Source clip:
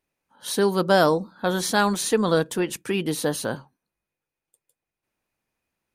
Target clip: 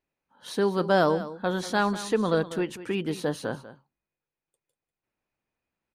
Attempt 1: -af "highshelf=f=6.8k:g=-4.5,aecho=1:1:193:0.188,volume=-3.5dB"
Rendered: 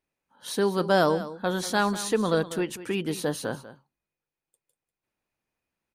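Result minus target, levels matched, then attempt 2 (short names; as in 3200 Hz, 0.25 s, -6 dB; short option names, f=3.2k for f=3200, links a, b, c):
8000 Hz band +6.0 dB
-af "highshelf=f=6.8k:g=-16,aecho=1:1:193:0.188,volume=-3.5dB"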